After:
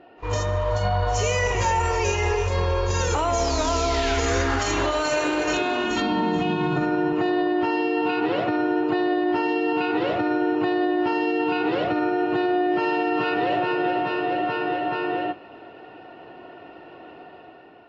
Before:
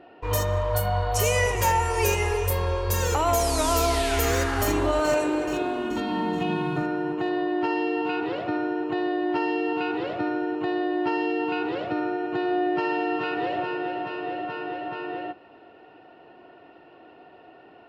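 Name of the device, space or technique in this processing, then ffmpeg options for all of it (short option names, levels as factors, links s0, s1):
low-bitrate web radio: -filter_complex "[0:a]asettb=1/sr,asplit=3[s0][s1][s2];[s0]atrim=end=4.594[s3];[s1]atrim=start=4.59:end=6.02,asetpts=PTS-STARTPTS,afade=t=in:d=0.004:c=qsin,afade=t=out:st=1.426:d=0.004:c=qsin,tiltshelf=f=970:g=-5.5[s4];[s2]atrim=start=6.016[s5];[s3][s4]acrossfade=d=0.004:c1=hsin:c2=qsin[s6];[s6][s5]acrossfade=d=0.004:c1=qsin:c2=hsin,dynaudnorm=f=220:g=7:m=2.24,alimiter=limit=0.188:level=0:latency=1:release=58" -ar 16000 -c:a aac -b:a 24k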